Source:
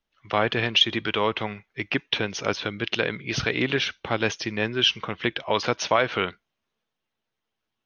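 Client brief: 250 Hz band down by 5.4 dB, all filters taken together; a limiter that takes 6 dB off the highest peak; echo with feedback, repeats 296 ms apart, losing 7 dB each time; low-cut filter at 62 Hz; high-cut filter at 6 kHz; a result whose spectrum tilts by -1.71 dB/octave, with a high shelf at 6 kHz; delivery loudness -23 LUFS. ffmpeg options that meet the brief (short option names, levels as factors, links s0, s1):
-af "highpass=62,lowpass=6000,equalizer=f=250:t=o:g=-7.5,highshelf=f=6000:g=-8.5,alimiter=limit=0.211:level=0:latency=1,aecho=1:1:296|592|888|1184|1480:0.447|0.201|0.0905|0.0407|0.0183,volume=1.78"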